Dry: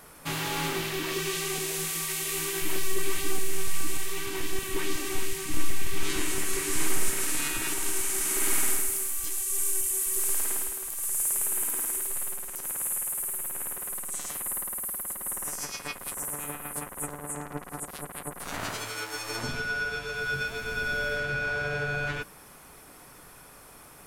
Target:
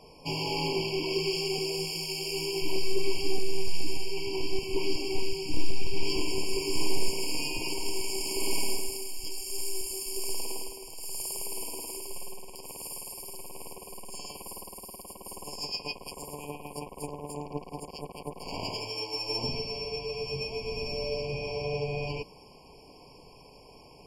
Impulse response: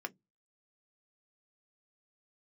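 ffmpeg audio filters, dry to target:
-af "adynamicsmooth=sensitivity=5.5:basefreq=5500,superequalizer=7b=1.58:11b=0.251:14b=3.55,afftfilt=real='re*eq(mod(floor(b*sr/1024/1100),2),0)':imag='im*eq(mod(floor(b*sr/1024/1100),2),0)':win_size=1024:overlap=0.75"

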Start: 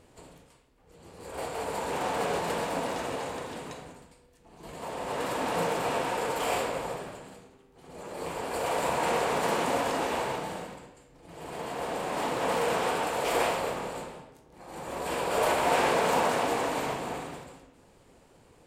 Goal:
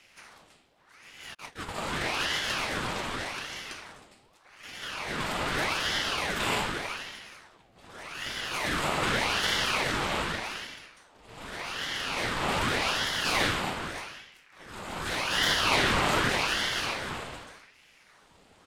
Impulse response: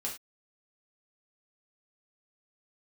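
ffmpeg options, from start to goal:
-filter_complex "[0:a]aresample=32000,aresample=44100,acrossover=split=100|760|4300[link_01][link_02][link_03][link_04];[link_03]crystalizer=i=6:c=0[link_05];[link_01][link_02][link_05][link_04]amix=inputs=4:normalize=0,asplit=3[link_06][link_07][link_08];[link_06]afade=type=out:start_time=1.33:duration=0.02[link_09];[link_07]agate=range=-43dB:threshold=-31dB:ratio=16:detection=peak,afade=type=in:start_time=1.33:duration=0.02,afade=type=out:start_time=1.81:duration=0.02[link_10];[link_08]afade=type=in:start_time=1.81:duration=0.02[link_11];[link_09][link_10][link_11]amix=inputs=3:normalize=0,aeval=exprs='val(0)*sin(2*PI*1400*n/s+1400*0.8/0.84*sin(2*PI*0.84*n/s))':channel_layout=same,volume=1dB"

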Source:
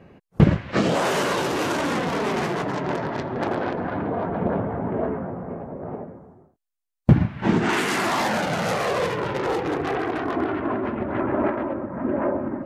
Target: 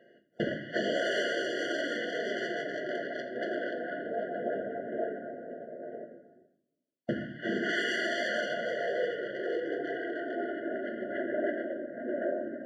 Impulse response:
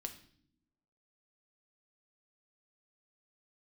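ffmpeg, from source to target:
-filter_complex "[0:a]highpass=520,lowpass=4300,asettb=1/sr,asplit=3[link_01][link_02][link_03];[link_01]atrim=end=8.534[link_04];[link_02]atrim=start=8.53:end=10.76,asetpts=PTS-STARTPTS,afade=type=in:duration=0.004:curve=qsin,afade=type=out:start_time=2.226:duration=0.004:curve=qsin,highshelf=frequency=3000:gain=-11.5[link_05];[link_03]atrim=start=10.756[link_06];[link_04][link_05]acrossfade=duration=0.004:curve1=hsin:curve2=qsin[link_07];[link_07][link_06]acrossfade=duration=0.004:curve1=qsin:curve2=hsin[link_08];[1:a]atrim=start_sample=2205[link_09];[link_08][link_09]afir=irnorm=-1:irlink=0,afftfilt=real='re*eq(mod(floor(b*sr/1024/700),2),0)':imag='im*eq(mod(floor(b*sr/1024/700),2),0)':win_size=1024:overlap=0.75"

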